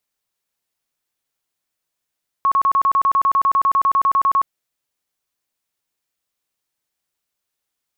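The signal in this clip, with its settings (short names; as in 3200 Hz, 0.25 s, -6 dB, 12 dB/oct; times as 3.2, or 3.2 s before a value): tone bursts 1100 Hz, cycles 73, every 0.10 s, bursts 20, -12 dBFS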